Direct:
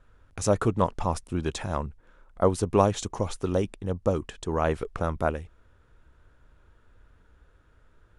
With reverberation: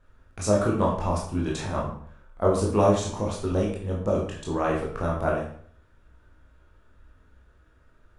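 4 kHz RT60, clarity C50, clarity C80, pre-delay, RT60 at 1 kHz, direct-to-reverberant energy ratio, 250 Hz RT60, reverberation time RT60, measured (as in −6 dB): 0.45 s, 4.5 dB, 8.5 dB, 16 ms, 0.55 s, −3.5 dB, 0.60 s, 0.55 s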